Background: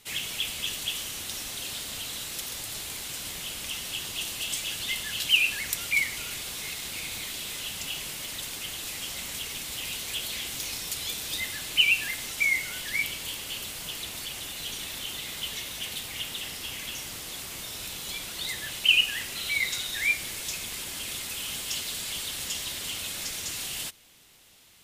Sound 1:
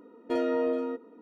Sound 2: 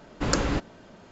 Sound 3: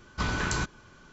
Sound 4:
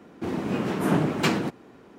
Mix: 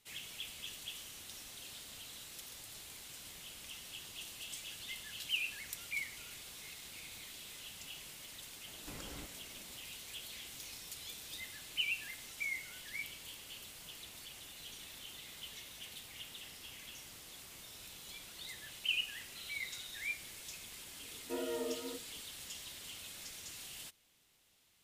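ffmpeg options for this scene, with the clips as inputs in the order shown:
-filter_complex "[0:a]volume=-14.5dB[a];[2:a]acompressor=threshold=-34dB:ratio=6:attack=3.2:release=140:knee=1:detection=peak[b];[1:a]flanger=delay=17:depth=7.9:speed=1.9[c];[b]atrim=end=1.11,asetpts=PTS-STARTPTS,volume=-12dB,afade=t=in:d=0.004:c=hsin,afade=t=out:st=1.106:d=0.004:c=hsin,adelay=8670[d];[c]atrim=end=1.21,asetpts=PTS-STARTPTS,volume=-9dB,afade=t=in:d=0.004:c=hsin,afade=t=out:st=1.206:d=0.004:c=hsin,adelay=926100S[e];[a][d][e]amix=inputs=3:normalize=0"

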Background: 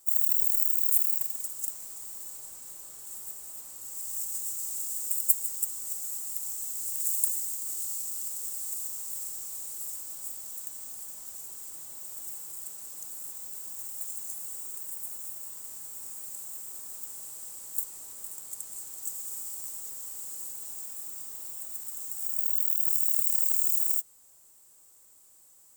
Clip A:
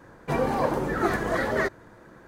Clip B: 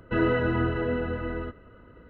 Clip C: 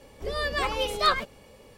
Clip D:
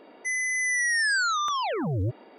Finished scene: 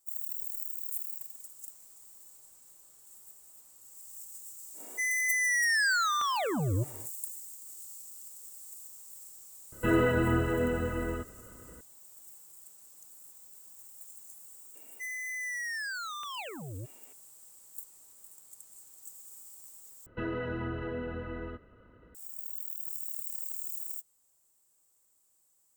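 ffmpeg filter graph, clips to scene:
-filter_complex "[4:a]asplit=2[a][b];[2:a]asplit=2[c][d];[0:a]volume=-12.5dB[e];[a]asplit=2[f][g];[g]adelay=232,lowpass=f=2k:p=1,volume=-22dB,asplit=2[h][i];[i]adelay=232,lowpass=f=2k:p=1,volume=0.47,asplit=2[j][k];[k]adelay=232,lowpass=f=2k:p=1,volume=0.47[l];[f][h][j][l]amix=inputs=4:normalize=0[m];[b]equalizer=f=2.7k:w=2.7:g=14.5[n];[d]acompressor=threshold=-29dB:ratio=6:attack=90:release=47:knee=6:detection=rms[o];[e]asplit=2[p][q];[p]atrim=end=20.064[r];[o]atrim=end=2.09,asetpts=PTS-STARTPTS,volume=-7dB[s];[q]atrim=start=22.146[t];[m]atrim=end=2.38,asetpts=PTS-STARTPTS,volume=-2.5dB,afade=t=in:d=0.1,afade=t=out:st=2.28:d=0.1,adelay=208593S[u];[c]atrim=end=2.09,asetpts=PTS-STARTPTS,volume=-1.5dB,afade=t=in:d=0.004:c=hsin,afade=t=out:st=2.086:d=0.004:c=hsin,adelay=9720[v];[n]atrim=end=2.38,asetpts=PTS-STARTPTS,volume=-14.5dB,afade=t=in:d=0.004:c=hsin,afade=t=out:st=2.376:d=0.004:c=hsin,adelay=14750[w];[r][s]acrossfade=d=0.004:c1=hsin:c2=hsin[x];[x][t]acrossfade=d=0.004:c1=hsin:c2=hsin[y];[y][u][v][w]amix=inputs=4:normalize=0"

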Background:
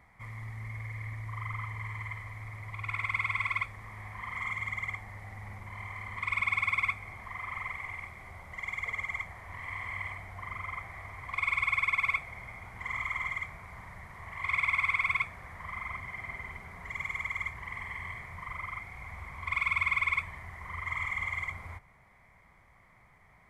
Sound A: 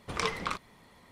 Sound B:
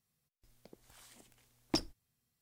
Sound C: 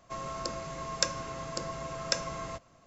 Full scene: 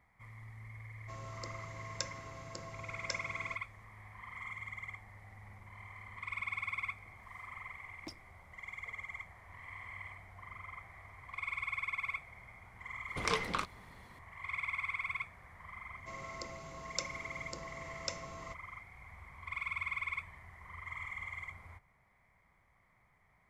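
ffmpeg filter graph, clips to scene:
-filter_complex "[3:a]asplit=2[a][b];[0:a]volume=-9.5dB[c];[b]asuperstop=centerf=1700:order=4:qfactor=4.6[d];[a]atrim=end=2.86,asetpts=PTS-STARTPTS,volume=-11dB,afade=t=in:d=0.004:c=hsin,afade=t=out:st=2.856:d=0.004:c=hsin,adelay=980[e];[2:a]atrim=end=2.41,asetpts=PTS-STARTPTS,volume=-15.5dB,afade=t=in:d=0.004:c=hsin,afade=t=out:st=2.406:d=0.004:c=hsin,adelay=6330[f];[1:a]atrim=end=1.11,asetpts=PTS-STARTPTS,volume=-2dB,afade=t=in:d=0.004:c=hsin,afade=t=out:st=1.106:d=0.004:c=hsin,adelay=13080[g];[d]atrim=end=2.86,asetpts=PTS-STARTPTS,volume=-9.5dB,afade=t=in:d=0.004:c=hsin,afade=t=out:st=2.856:d=0.004:c=hsin,adelay=15960[h];[c][e][f][g][h]amix=inputs=5:normalize=0"

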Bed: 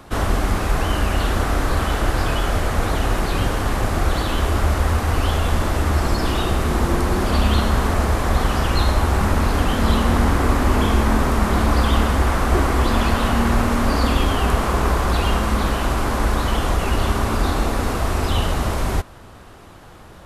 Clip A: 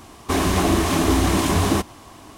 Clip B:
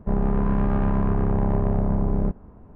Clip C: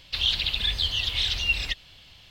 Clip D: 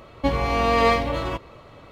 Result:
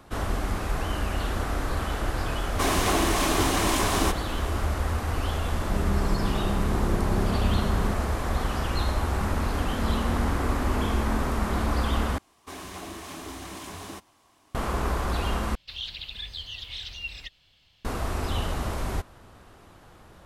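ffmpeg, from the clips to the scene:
-filter_complex "[1:a]asplit=2[a][b];[0:a]volume=-8.5dB[c];[a]highpass=f=530:p=1[d];[b]lowshelf=f=470:g=-8.5[e];[c]asplit=3[f][g][h];[f]atrim=end=12.184[i];[e]atrim=end=2.37,asetpts=PTS-STARTPTS,volume=-16dB[j];[g]atrim=start=14.546:end=15.554[k];[3:a]atrim=end=2.3,asetpts=PTS-STARTPTS,volume=-11.5dB[l];[h]atrim=start=17.846[m];[d]atrim=end=2.37,asetpts=PTS-STARTPTS,volume=-1.5dB,afade=t=in:d=0.004:c=hsin,afade=t=out:st=2.366:d=0.004:c=hsin,adelay=2300[n];[2:a]atrim=end=2.75,asetpts=PTS-STARTPTS,volume=-6.5dB,afade=t=in:d=0.004:c=hsin,afade=t=out:st=2.746:d=0.004:c=hsin,adelay=5630[o];[i][j]acrossfade=d=0.004:c1=hsin:c2=hsin[p];[p][k]acrossfade=d=0.004:c1=hsin:c2=hsin[q];[q][l]acrossfade=d=0.004:c1=hsin:c2=hsin[r];[r][m]acrossfade=d=0.004:c1=hsin:c2=hsin[s];[s][n][o]amix=inputs=3:normalize=0"

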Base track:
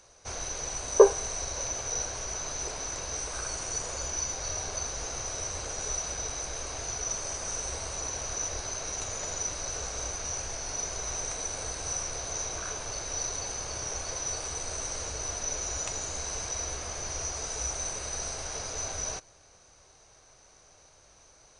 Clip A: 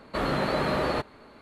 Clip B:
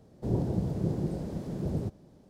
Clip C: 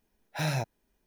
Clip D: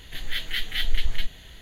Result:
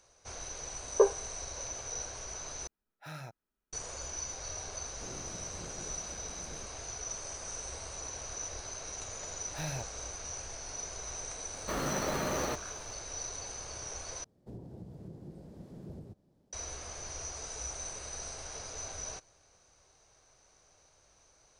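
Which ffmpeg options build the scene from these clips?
-filter_complex "[3:a]asplit=2[a][b];[2:a]asplit=2[c][d];[0:a]volume=-7dB[e];[a]equalizer=f=1.3k:t=o:w=0.29:g=13.5[f];[c]bass=f=250:g=-6,treble=f=4k:g=8[g];[1:a]acrusher=bits=3:mode=log:mix=0:aa=0.000001[h];[d]alimiter=limit=-24dB:level=0:latency=1:release=404[i];[e]asplit=3[j][k][l];[j]atrim=end=2.674[m];[f]atrim=end=1.06,asetpts=PTS-STARTPTS,volume=-16dB[n];[k]atrim=start=3.726:end=14.244[o];[i]atrim=end=2.29,asetpts=PTS-STARTPTS,volume=-12.5dB[p];[l]atrim=start=16.526[q];[g]atrim=end=2.29,asetpts=PTS-STARTPTS,volume=-16.5dB,afade=t=in:d=0.004:c=hsin,afade=t=out:st=2.286:d=0.004:c=hsin,adelay=210357S[r];[b]atrim=end=1.06,asetpts=PTS-STARTPTS,volume=-9dB,afade=t=in:d=0.004:c=hsin,afade=t=out:st=1.056:d=0.004:c=hsin,adelay=9190[s];[h]atrim=end=1.41,asetpts=PTS-STARTPTS,volume=-7.5dB,afade=t=in:d=0.004:c=hsin,afade=t=out:st=1.406:d=0.004:c=hsin,adelay=508914S[t];[m][n]acrossfade=d=0.004:c1=hsin:c2=hsin[u];[u][o]acrossfade=d=0.004:c1=hsin:c2=hsin[v];[v][p]acrossfade=d=0.004:c1=hsin:c2=hsin[w];[w][q]acrossfade=d=0.004:c1=hsin:c2=hsin[x];[x][r][s][t]amix=inputs=4:normalize=0"

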